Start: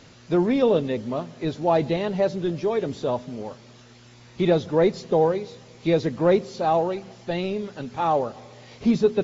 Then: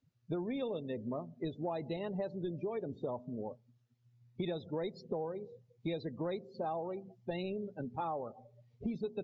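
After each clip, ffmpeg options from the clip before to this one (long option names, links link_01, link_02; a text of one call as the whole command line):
ffmpeg -i in.wav -filter_complex "[0:a]afftdn=noise_reduction=33:noise_floor=-32,acrossover=split=3400[link_01][link_02];[link_01]acompressor=threshold=-29dB:ratio=10[link_03];[link_03][link_02]amix=inputs=2:normalize=0,volume=-5.5dB" out.wav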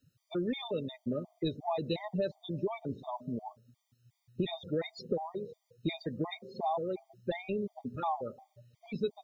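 ffmpeg -i in.wav -af "highshelf=frequency=2600:gain=10,afftfilt=real='re*gt(sin(2*PI*2.8*pts/sr)*(1-2*mod(floor(b*sr/1024/620),2)),0)':imag='im*gt(sin(2*PI*2.8*pts/sr)*(1-2*mod(floor(b*sr/1024/620),2)),0)':win_size=1024:overlap=0.75,volume=5.5dB" out.wav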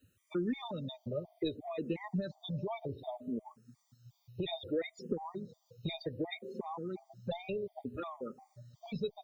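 ffmpeg -i in.wav -filter_complex "[0:a]acompressor=threshold=-49dB:ratio=1.5,asplit=2[link_01][link_02];[link_02]afreqshift=-0.63[link_03];[link_01][link_03]amix=inputs=2:normalize=1,volume=7.5dB" out.wav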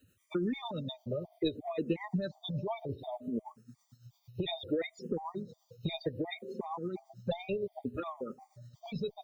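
ffmpeg -i in.wav -af "tremolo=f=8.9:d=0.47,volume=4.5dB" out.wav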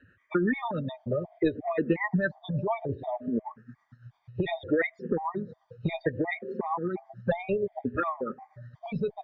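ffmpeg -i in.wav -af "lowpass=frequency=1700:width_type=q:width=6.7,volume=6dB" out.wav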